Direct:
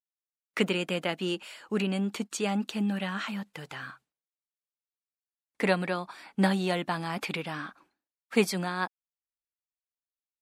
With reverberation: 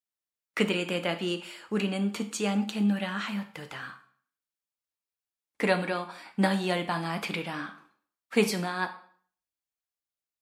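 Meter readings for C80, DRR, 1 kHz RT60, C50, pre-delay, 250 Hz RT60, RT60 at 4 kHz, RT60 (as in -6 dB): 16.0 dB, 6.5 dB, 0.50 s, 12.5 dB, 4 ms, 0.55 s, 0.45 s, 0.55 s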